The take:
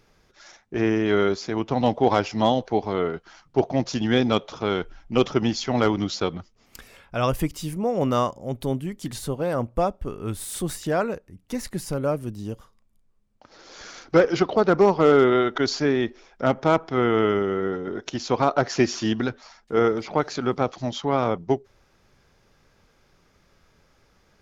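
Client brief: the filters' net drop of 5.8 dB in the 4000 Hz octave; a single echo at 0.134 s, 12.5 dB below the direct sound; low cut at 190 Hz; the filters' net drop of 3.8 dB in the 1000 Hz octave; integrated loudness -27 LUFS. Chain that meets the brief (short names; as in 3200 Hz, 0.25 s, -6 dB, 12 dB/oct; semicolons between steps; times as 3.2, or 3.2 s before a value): HPF 190 Hz; bell 1000 Hz -5 dB; bell 4000 Hz -7.5 dB; echo 0.134 s -12.5 dB; gain -1.5 dB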